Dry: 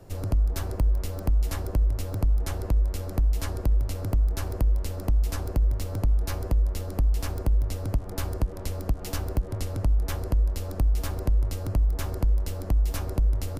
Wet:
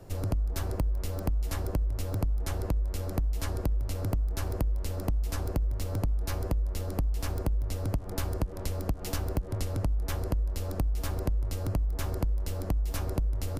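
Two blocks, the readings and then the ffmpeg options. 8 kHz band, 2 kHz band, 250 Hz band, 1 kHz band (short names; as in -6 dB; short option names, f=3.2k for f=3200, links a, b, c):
-1.5 dB, -1.5 dB, -1.0 dB, -1.0 dB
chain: -af "acompressor=threshold=-25dB:ratio=6"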